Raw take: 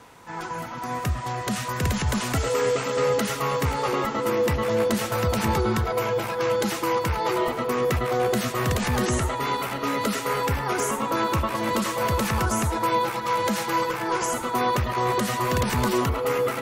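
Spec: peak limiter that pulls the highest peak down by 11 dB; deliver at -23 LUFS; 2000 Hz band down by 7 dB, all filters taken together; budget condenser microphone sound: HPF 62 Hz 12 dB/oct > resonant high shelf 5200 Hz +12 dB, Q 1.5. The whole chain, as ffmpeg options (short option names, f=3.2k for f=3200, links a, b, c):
-af "equalizer=f=2k:t=o:g=-7.5,alimiter=level_in=0.5dB:limit=-24dB:level=0:latency=1,volume=-0.5dB,highpass=62,highshelf=f=5.2k:t=q:w=1.5:g=12,volume=6dB"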